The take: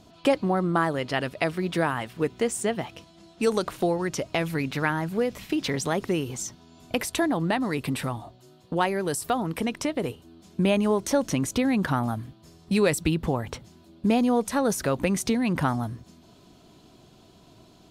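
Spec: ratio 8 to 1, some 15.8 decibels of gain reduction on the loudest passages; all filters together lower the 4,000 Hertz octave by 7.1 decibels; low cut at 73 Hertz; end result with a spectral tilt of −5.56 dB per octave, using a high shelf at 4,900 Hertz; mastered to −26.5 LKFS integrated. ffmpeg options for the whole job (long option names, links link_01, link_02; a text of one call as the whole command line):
ffmpeg -i in.wav -af "highpass=73,equalizer=frequency=4000:width_type=o:gain=-8,highshelf=frequency=4900:gain=-4.5,acompressor=threshold=-34dB:ratio=8,volume=12.5dB" out.wav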